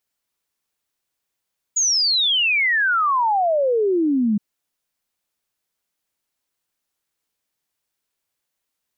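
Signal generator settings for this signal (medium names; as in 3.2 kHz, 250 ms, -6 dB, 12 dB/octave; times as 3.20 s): log sweep 6.9 kHz -> 200 Hz 2.62 s -15.5 dBFS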